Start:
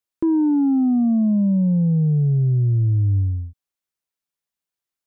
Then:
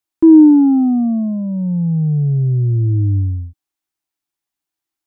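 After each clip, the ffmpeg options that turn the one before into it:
ffmpeg -i in.wav -af "equalizer=frequency=200:width_type=o:width=0.33:gain=-7,equalizer=frequency=315:width_type=o:width=0.33:gain=11,equalizer=frequency=500:width_type=o:width=0.33:gain=-11,equalizer=frequency=800:width_type=o:width=0.33:gain=5,volume=3dB" out.wav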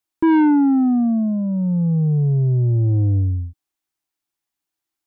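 ffmpeg -i in.wav -af "asoftclip=type=tanh:threshold=-12dB" out.wav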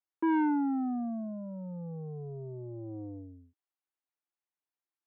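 ffmpeg -i in.wav -af "highpass=360,lowpass=2200,volume=-9dB" out.wav

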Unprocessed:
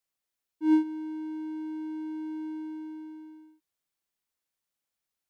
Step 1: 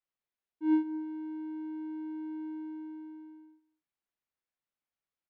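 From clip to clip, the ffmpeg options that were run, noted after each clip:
ffmpeg -i in.wav -af "lowpass=2800,aecho=1:1:221:0.112,volume=-4dB" out.wav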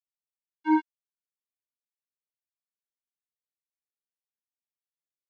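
ffmpeg -i in.wav -af "acrusher=bits=3:mix=0:aa=0.5,volume=3dB" out.wav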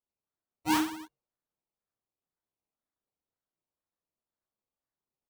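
ffmpeg -i in.wav -af "bandreject=frequency=254.6:width_type=h:width=4,bandreject=frequency=509.2:width_type=h:width=4,bandreject=frequency=763.8:width_type=h:width=4,bandreject=frequency=1018.4:width_type=h:width=4,bandreject=frequency=1273:width_type=h:width=4,bandreject=frequency=1527.6:width_type=h:width=4,bandreject=frequency=1782.2:width_type=h:width=4,bandreject=frequency=2036.8:width_type=h:width=4,bandreject=frequency=2291.4:width_type=h:width=4,bandreject=frequency=2546:width_type=h:width=4,bandreject=frequency=2800.6:width_type=h:width=4,bandreject=frequency=3055.2:width_type=h:width=4,bandreject=frequency=3309.8:width_type=h:width=4,acrusher=samples=21:mix=1:aa=0.000001:lfo=1:lforange=12.6:lforate=2,aecho=1:1:30|69|119.7|185.6|271.3:0.631|0.398|0.251|0.158|0.1,volume=-4dB" out.wav

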